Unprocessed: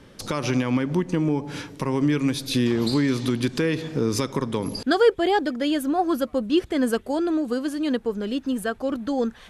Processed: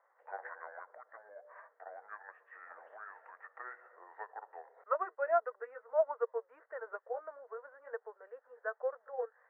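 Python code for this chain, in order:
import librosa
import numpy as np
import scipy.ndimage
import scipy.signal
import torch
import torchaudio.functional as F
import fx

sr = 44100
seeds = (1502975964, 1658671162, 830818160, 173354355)

y = fx.pitch_glide(x, sr, semitones=-7.5, runs='ending unshifted')
y = scipy.signal.sosfilt(scipy.signal.cheby1(5, 1.0, [470.0, 1900.0], 'bandpass', fs=sr, output='sos'), y)
y = fx.upward_expand(y, sr, threshold_db=-38.0, expansion=1.5)
y = F.gain(torch.from_numpy(y), -3.5).numpy()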